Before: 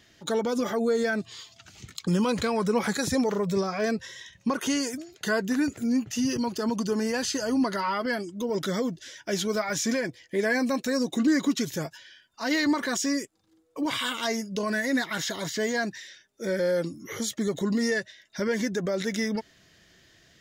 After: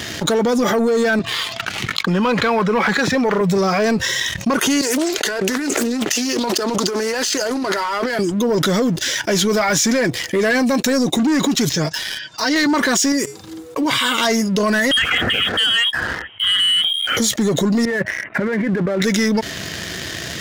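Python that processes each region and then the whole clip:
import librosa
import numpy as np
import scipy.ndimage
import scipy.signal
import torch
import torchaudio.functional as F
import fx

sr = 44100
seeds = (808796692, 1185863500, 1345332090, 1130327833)

y = fx.chain(x, sr, fx.bandpass_edges(low_hz=120.0, high_hz=2200.0),
    fx.tilt_shelf(db=-6.0, hz=820.0), at=(1.19, 3.41))
y = fx.chain(y, sr, fx.highpass(hz=310.0, slope=24),
    fx.over_compress(threshold_db=-41.0, ratio=-1.0),
    fx.doppler_dist(depth_ms=0.33), at=(4.81, 8.19))
y = fx.chain(y, sr, fx.ladder_lowpass(hz=6600.0, resonance_pct=40),
    fx.comb(ms=6.5, depth=0.71), at=(11.69, 12.56))
y = fx.chain(y, sr, fx.notch(hz=660.0, q=22.0),
    fx.comb_fb(f0_hz=140.0, decay_s=0.25, harmonics='odd', damping=0.0, mix_pct=50), at=(13.12, 14.18))
y = fx.chain(y, sr, fx.highpass(hz=200.0, slope=24),
    fx.freq_invert(carrier_hz=3500), at=(14.91, 17.17))
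y = fx.chain(y, sr, fx.law_mismatch(coded='A'),
    fx.steep_lowpass(hz=2400.0, slope=48),
    fx.over_compress(threshold_db=-38.0, ratio=-1.0), at=(17.85, 19.02))
y = scipy.signal.sosfilt(scipy.signal.butter(4, 58.0, 'highpass', fs=sr, output='sos'), y)
y = fx.leveller(y, sr, passes=2)
y = fx.env_flatten(y, sr, amount_pct=70)
y = F.gain(torch.from_numpy(y), 1.5).numpy()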